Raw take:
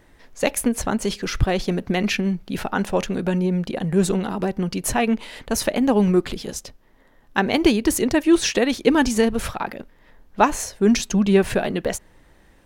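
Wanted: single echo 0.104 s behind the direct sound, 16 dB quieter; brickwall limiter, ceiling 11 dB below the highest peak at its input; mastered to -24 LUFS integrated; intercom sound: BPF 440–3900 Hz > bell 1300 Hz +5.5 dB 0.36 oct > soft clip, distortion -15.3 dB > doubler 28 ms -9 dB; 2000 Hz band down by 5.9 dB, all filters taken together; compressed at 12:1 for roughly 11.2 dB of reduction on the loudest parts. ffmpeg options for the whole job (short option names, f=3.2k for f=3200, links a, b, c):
-filter_complex "[0:a]equalizer=f=2k:t=o:g=-9,acompressor=threshold=-22dB:ratio=12,alimiter=limit=-23dB:level=0:latency=1,highpass=440,lowpass=3.9k,equalizer=f=1.3k:t=o:w=0.36:g=5.5,aecho=1:1:104:0.158,asoftclip=threshold=-29dB,asplit=2[a][b];[b]adelay=28,volume=-9dB[c];[a][c]amix=inputs=2:normalize=0,volume=15dB"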